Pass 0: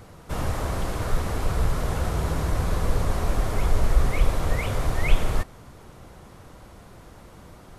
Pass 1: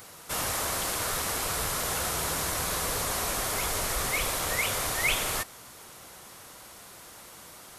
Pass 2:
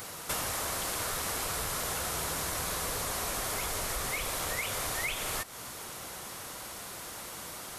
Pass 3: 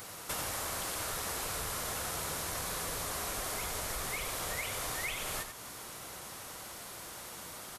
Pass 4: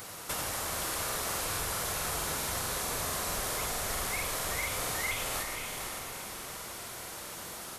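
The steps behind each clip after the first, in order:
spectral tilt +4 dB per octave
downward compressor 10 to 1, threshold −36 dBFS, peak gain reduction 14.5 dB; level +5.5 dB
single-tap delay 91 ms −7.5 dB; level −4 dB
feedback delay with all-pass diffusion 509 ms, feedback 42%, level −5 dB; regular buffer underruns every 0.22 s, samples 2,048, repeat, from 0:00.84; level +2 dB

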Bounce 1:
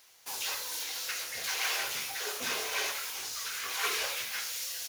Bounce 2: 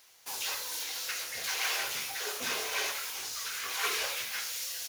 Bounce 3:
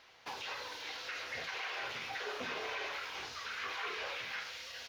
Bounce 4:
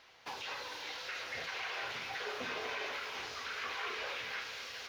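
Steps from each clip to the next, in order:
no processing that can be heard
brickwall limiter −27.5 dBFS, peak gain reduction 8 dB; downward compressor, threshold −39 dBFS, peak gain reduction 6 dB; high-frequency loss of the air 270 metres; level +7 dB
feedback echo at a low word length 247 ms, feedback 80%, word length 11 bits, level −12 dB

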